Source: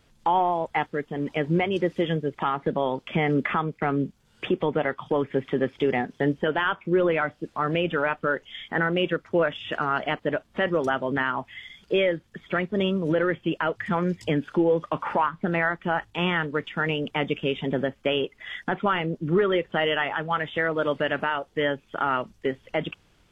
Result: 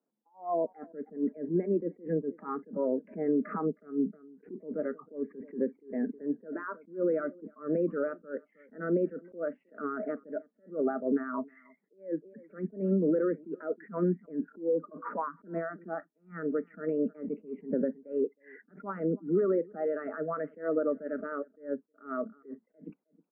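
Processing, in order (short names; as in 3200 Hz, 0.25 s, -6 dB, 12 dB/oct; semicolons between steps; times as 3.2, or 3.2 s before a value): limiter -18 dBFS, peak gain reduction 5 dB; steep high-pass 190 Hz 48 dB/oct; spectral noise reduction 23 dB; compressor, threshold -28 dBFS, peak gain reduction 6.5 dB; Gaussian blur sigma 8.3 samples; outdoor echo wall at 54 m, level -26 dB; attack slew limiter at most 200 dB/s; gain +6 dB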